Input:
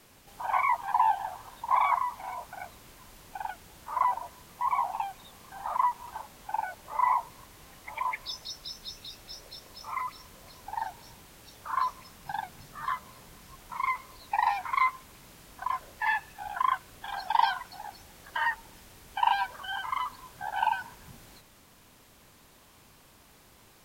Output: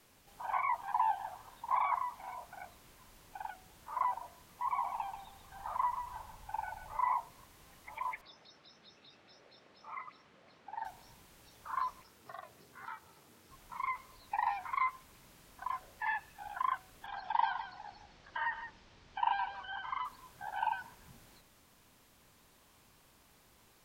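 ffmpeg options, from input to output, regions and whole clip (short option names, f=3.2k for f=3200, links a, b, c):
-filter_complex "[0:a]asettb=1/sr,asplit=3[a][b][c];[a]atrim=end=4.704[d];[b]atrim=start=4.7:end=6.97,asetpts=PTS-STARTPTS,afade=t=in:d=0.004:c=qsin,afade=t=out:st=2.266:d=0.004:c=qsin,asubboost=boost=6.5:cutoff=130,aecho=1:1:136|272|408|544:0.398|0.131|0.0434|0.0143,atrim=end_sample=100107[e];[c]atrim=start=6.966[f];[d][e]acrossfade=d=0.004:c1=hsin:c2=qsin[g];[g][f]acrossfade=d=0.004:c1=qsin:c2=hsin,asettb=1/sr,asplit=3[h][i][j];[h]atrim=end=8.214[k];[i]atrim=start=8.21:end=10.85,asetpts=PTS-STARTPTS,afade=t=in:d=0.004:c=qsin,afade=t=out:st=2.636:d=0.004:c=qsin,highpass=170,lowpass=2.9k,bandreject=f=1k:w=9.4[l];[j]atrim=start=10.846[m];[k][l]acrossfade=d=0.004:c1=hsin:c2=qsin[n];[n][m]acrossfade=d=0.004:c1=qsin:c2=hsin,asettb=1/sr,asplit=3[o][p][q];[o]atrim=end=12.024[r];[p]atrim=start=12.02:end=13.51,asetpts=PTS-STARTPTS,afade=t=in:d=0.004:c=qsin,afade=t=out:st=1.486:d=0.004:c=qsin,aeval=exprs='val(0)*sin(2*PI*200*n/s)':c=same,acompressor=threshold=-39dB:ratio=1.5:attack=3.2:release=140:knee=1:detection=peak,afreqshift=72[s];[q]atrim=start=13.506[t];[r][s]acrossfade=d=0.004:c1=hsin:c2=qsin[u];[u][t]acrossfade=d=0.004:c1=qsin:c2=hsin,asettb=1/sr,asplit=3[v][w][x];[v]atrim=end=17.064[y];[w]atrim=start=17.06:end=20.05,asetpts=PTS-STARTPTS,afade=t=in:d=0.004:c=qsin,afade=t=out:st=2.986:d=0.004:c=qsin,lowpass=f=5.4k:w=0.5412,lowpass=f=5.4k:w=1.3066,aecho=1:1:163:0.282,atrim=end_sample=131859[z];[x]atrim=start=20.046[aa];[y][z]acrossfade=d=0.004:c1=hsin:c2=qsin[ab];[ab][aa]acrossfade=d=0.004:c1=qsin:c2=hsin,acrossover=split=2800[ac][ad];[ad]acompressor=threshold=-51dB:ratio=4:attack=1:release=60[ae];[ac][ae]amix=inputs=2:normalize=0,bandreject=f=49.99:t=h:w=4,bandreject=f=99.98:t=h:w=4,bandreject=f=149.97:t=h:w=4,bandreject=f=199.96:t=h:w=4,bandreject=f=249.95:t=h:w=4,bandreject=f=299.94:t=h:w=4,bandreject=f=349.93:t=h:w=4,bandreject=f=399.92:t=h:w=4,bandreject=f=449.91:t=h:w=4,bandreject=f=499.9:t=h:w=4,bandreject=f=549.89:t=h:w=4,bandreject=f=599.88:t=h:w=4,bandreject=f=649.87:t=h:w=4,bandreject=f=699.86:t=h:w=4,bandreject=f=749.85:t=h:w=4,volume=-7dB"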